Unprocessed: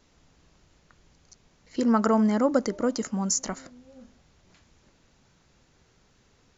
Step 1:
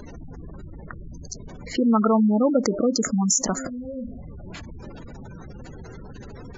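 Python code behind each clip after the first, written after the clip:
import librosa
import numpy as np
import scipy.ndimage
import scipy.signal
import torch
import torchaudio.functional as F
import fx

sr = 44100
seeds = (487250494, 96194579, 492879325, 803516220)

y = fx.spec_gate(x, sr, threshold_db=-15, keep='strong')
y = fx.env_flatten(y, sr, amount_pct=50)
y = y * 10.0 ** (2.0 / 20.0)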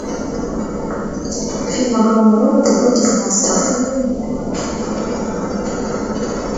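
y = fx.bin_compress(x, sr, power=0.4)
y = fx.rev_gated(y, sr, seeds[0], gate_ms=460, shape='falling', drr_db=-8.0)
y = y * 10.0 ** (-4.5 / 20.0)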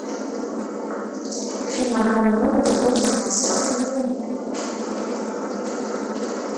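y = fx.brickwall_highpass(x, sr, low_hz=200.0)
y = fx.doppler_dist(y, sr, depth_ms=0.51)
y = y * 10.0 ** (-5.0 / 20.0)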